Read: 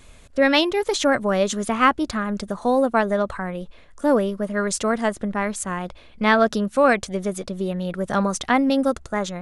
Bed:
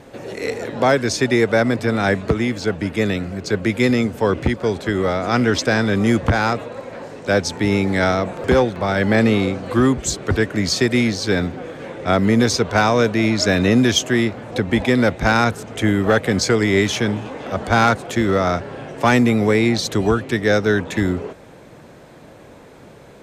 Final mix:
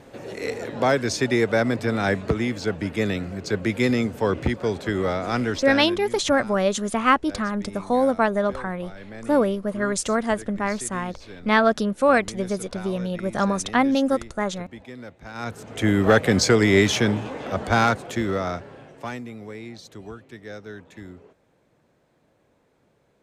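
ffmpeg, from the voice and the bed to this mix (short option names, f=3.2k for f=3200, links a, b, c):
-filter_complex "[0:a]adelay=5250,volume=-1dB[a];[1:a]volume=18.5dB,afade=t=out:st=5.13:d=0.91:silence=0.112202,afade=t=in:st=15.33:d=0.74:silence=0.0707946,afade=t=out:st=16.96:d=2.26:silence=0.0891251[b];[a][b]amix=inputs=2:normalize=0"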